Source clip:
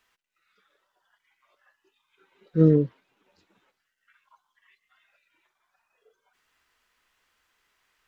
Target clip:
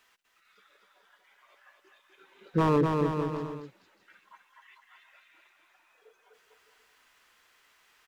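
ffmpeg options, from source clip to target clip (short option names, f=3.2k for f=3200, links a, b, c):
-filter_complex "[0:a]lowshelf=f=170:g=-9.5,asplit=2[a][b];[b]acompressor=threshold=-30dB:ratio=6,volume=-1.5dB[c];[a][c]amix=inputs=2:normalize=0,aeval=exprs='0.158*(abs(mod(val(0)/0.158+3,4)-2)-1)':c=same,aecho=1:1:250|450|610|738|840.4:0.631|0.398|0.251|0.158|0.1"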